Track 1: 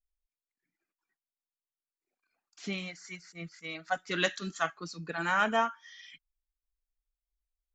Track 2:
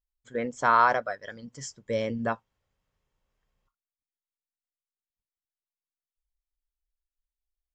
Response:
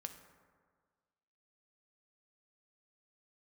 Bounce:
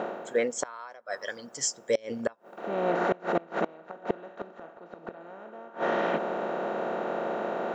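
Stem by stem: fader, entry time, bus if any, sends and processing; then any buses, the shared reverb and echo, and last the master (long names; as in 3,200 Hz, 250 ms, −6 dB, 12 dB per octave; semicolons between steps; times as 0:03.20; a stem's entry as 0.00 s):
+2.5 dB, 0.00 s, no send, compressor on every frequency bin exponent 0.2; resonant band-pass 350 Hz, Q 0.64; automatic ducking −24 dB, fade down 0.55 s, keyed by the second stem
−0.5 dB, 0.00 s, send −18 dB, spectral tilt +4 dB per octave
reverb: on, RT60 1.7 s, pre-delay 3 ms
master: parametric band 450 Hz +10 dB 2 octaves; gate with flip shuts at −13 dBFS, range −27 dB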